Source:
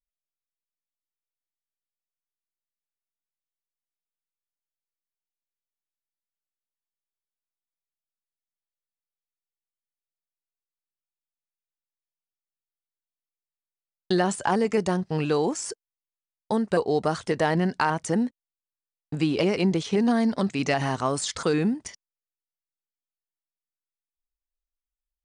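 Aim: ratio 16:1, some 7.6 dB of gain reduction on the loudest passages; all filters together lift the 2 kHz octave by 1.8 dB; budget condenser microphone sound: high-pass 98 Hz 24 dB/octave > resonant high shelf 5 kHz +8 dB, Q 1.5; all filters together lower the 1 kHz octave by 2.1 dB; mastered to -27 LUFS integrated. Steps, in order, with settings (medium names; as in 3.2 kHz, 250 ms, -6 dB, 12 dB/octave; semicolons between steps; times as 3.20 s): peaking EQ 1 kHz -3.5 dB; peaking EQ 2 kHz +4.5 dB; compression 16:1, threshold -26 dBFS; high-pass 98 Hz 24 dB/octave; resonant high shelf 5 kHz +8 dB, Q 1.5; trim +3 dB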